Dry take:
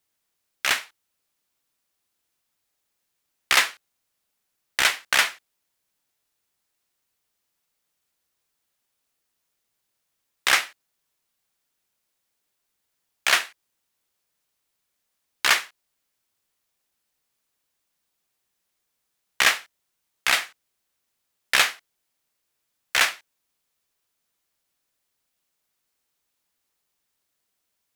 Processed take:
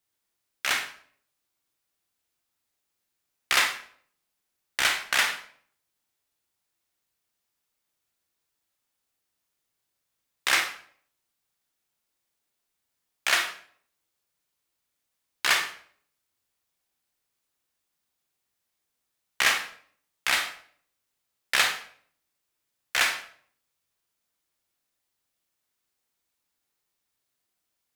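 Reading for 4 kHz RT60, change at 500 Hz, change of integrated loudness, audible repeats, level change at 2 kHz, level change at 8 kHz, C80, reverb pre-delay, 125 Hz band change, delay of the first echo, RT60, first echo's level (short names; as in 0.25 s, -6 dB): 0.40 s, -3.0 dB, -3.5 dB, none, -3.0 dB, -3.5 dB, 11.5 dB, 25 ms, n/a, none, 0.55 s, none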